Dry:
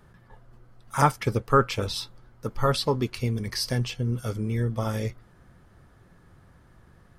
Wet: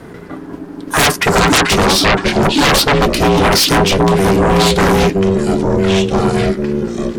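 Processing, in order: ever faster or slower copies 119 ms, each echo -4 st, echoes 3, each echo -6 dB; ring modulator 290 Hz; sine folder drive 20 dB, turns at -6.5 dBFS

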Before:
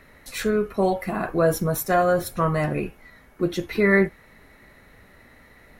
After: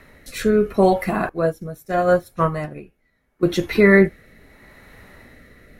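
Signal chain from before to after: rotary cabinet horn 0.75 Hz; 1.29–3.43 s: upward expansion 2.5:1, over -31 dBFS; trim +6.5 dB

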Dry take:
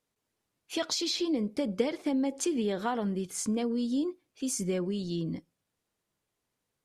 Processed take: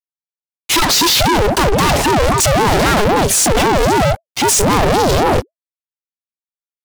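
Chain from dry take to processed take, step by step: fuzz box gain 53 dB, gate -60 dBFS; ring modulator with a swept carrier 440 Hz, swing 55%, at 3.8 Hz; trim +4.5 dB

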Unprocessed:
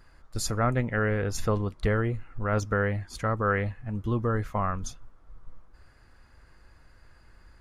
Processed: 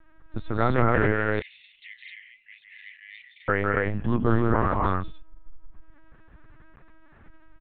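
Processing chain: 1.14–3.49 s: steep high-pass 2 kHz 96 dB/octave; crackle 22 per s -59 dBFS; loudspeakers at several distances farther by 57 m -4 dB, 72 m -5 dB, 90 m -2 dB; LPC vocoder at 8 kHz pitch kept; tape noise reduction on one side only decoder only; trim +2 dB

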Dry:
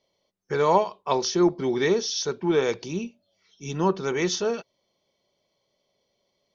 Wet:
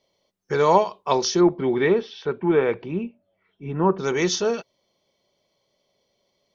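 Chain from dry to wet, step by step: 1.40–3.98 s: low-pass 3.2 kHz -> 1.9 kHz 24 dB/octave; trim +3 dB

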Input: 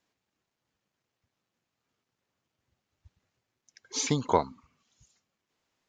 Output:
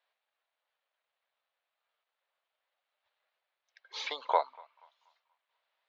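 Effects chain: elliptic band-pass 580–3900 Hz, stop band 50 dB; band-passed feedback delay 240 ms, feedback 44%, band-pass 1.5 kHz, level -23.5 dB

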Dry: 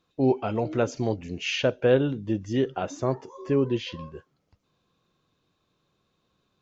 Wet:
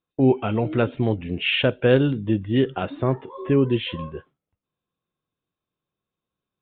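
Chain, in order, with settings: resampled via 8 kHz; dynamic bell 650 Hz, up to -6 dB, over -36 dBFS, Q 0.79; gate with hold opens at -43 dBFS; trim +7 dB

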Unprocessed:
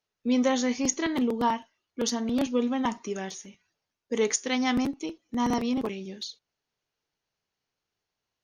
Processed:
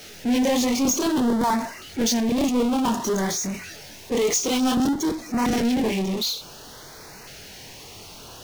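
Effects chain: chorus voices 2, 1.5 Hz, delay 24 ms, depth 3 ms; power-law waveshaper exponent 0.35; LFO notch saw up 0.55 Hz 970–3500 Hz

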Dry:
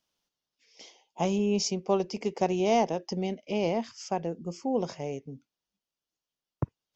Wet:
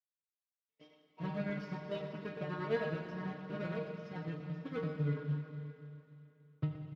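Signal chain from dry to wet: square wave that keeps the level; expander -47 dBFS; bass shelf 300 Hz +9 dB; in parallel at -2 dB: compression 20:1, threshold -29 dBFS, peak gain reduction 18 dB; on the sum: square tremolo 8.9 Hz, depth 60%, duty 60%; inharmonic resonator 150 Hz, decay 0.36 s, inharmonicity 0.002; vibrato 1.1 Hz 25 cents; Butterworth band-stop 820 Hz, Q 4.9; distance through air 380 m; on a send: delay 119 ms -11.5 dB; on the sum: Schroeder reverb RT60 2.8 s, combs from 32 ms, DRR 4 dB; trim -2.5 dB; Speex 36 kbps 32 kHz

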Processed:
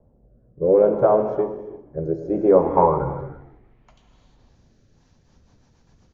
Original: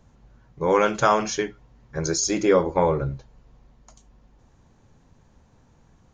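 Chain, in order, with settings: gated-style reverb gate 380 ms flat, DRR 7 dB; rotary cabinet horn 0.65 Hz, later 8 Hz, at 4.74 s; on a send: frequency-shifting echo 157 ms, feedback 52%, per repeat -41 Hz, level -19 dB; on the sum: low-pass sweep 580 Hz -> 5.3 kHz, 2.31–4.62 s

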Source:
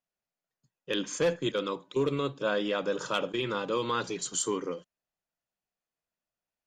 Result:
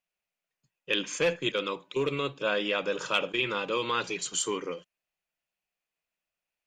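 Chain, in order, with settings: fifteen-band graphic EQ 100 Hz -6 dB, 250 Hz -4 dB, 2.5 kHz +10 dB

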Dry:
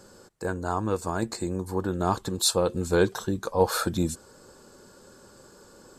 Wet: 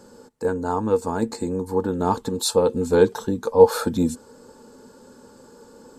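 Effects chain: small resonant body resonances 250/460/870 Hz, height 13 dB, ringing for 60 ms; trim -1 dB

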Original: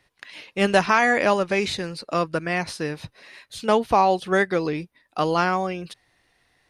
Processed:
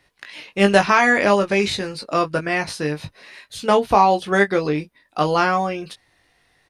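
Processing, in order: doubling 20 ms -6 dB; trim +2.5 dB

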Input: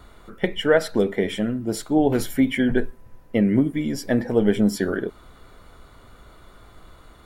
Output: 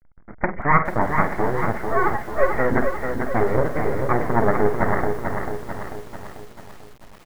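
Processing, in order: 1.85–2.55 s: formants replaced by sine waves; on a send: flutter echo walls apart 8.2 m, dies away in 0.26 s; on the sum: hysteresis with a dead band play -33 dBFS; comb 1.4 ms, depth 32%; full-wave rectifier; steep low-pass 2.1 kHz 96 dB/octave; tilt EQ +1.5 dB/octave; frequency-shifting echo 319 ms, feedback 42%, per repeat -66 Hz, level -23 dB; in parallel at -1 dB: compression 20:1, threshold -34 dBFS, peak gain reduction 20.5 dB; on the sum: bit-crushed delay 442 ms, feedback 55%, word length 8-bit, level -5.5 dB; trim +4.5 dB

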